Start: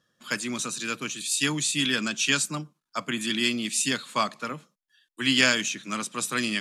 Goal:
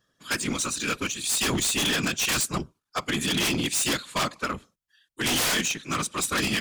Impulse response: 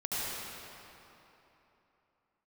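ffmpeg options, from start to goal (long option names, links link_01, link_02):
-af "afftfilt=real='hypot(re,im)*cos(2*PI*random(0))':imag='hypot(re,im)*sin(2*PI*random(1))':win_size=512:overlap=0.75,aeval=exprs='0.2*sin(PI/2*5.62*val(0)/0.2)':channel_layout=same,aeval=exprs='0.211*(cos(1*acos(clip(val(0)/0.211,-1,1)))-cos(1*PI/2))+0.0422*(cos(3*acos(clip(val(0)/0.211,-1,1)))-cos(3*PI/2))+0.00422*(cos(5*acos(clip(val(0)/0.211,-1,1)))-cos(5*PI/2))':channel_layout=same,volume=-6.5dB"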